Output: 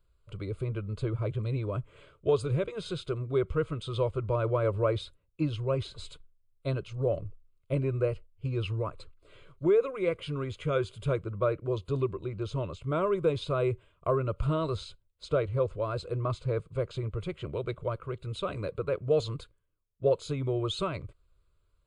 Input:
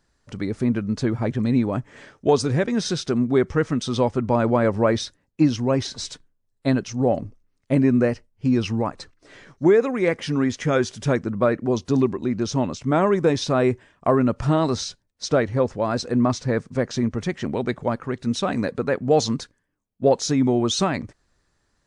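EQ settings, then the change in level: low shelf 120 Hz +11.5 dB; fixed phaser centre 1200 Hz, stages 8; -7.0 dB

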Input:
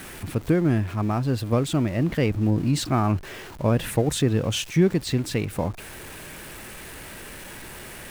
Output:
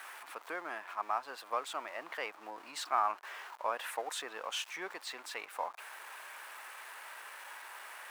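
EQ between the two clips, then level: ladder high-pass 790 Hz, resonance 35%; high shelf 2100 Hz -10 dB; +4.5 dB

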